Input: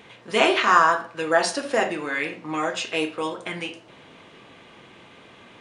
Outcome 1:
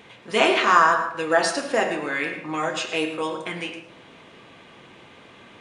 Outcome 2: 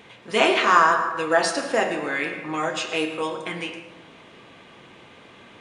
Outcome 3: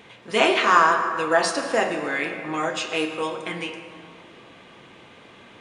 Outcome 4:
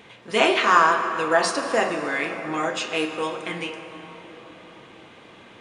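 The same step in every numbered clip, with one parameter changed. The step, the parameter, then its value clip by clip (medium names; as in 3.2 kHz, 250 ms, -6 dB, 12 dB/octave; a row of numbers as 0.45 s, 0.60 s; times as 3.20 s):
plate-style reverb, RT60: 0.57 s, 1.2 s, 2.5 s, 5.3 s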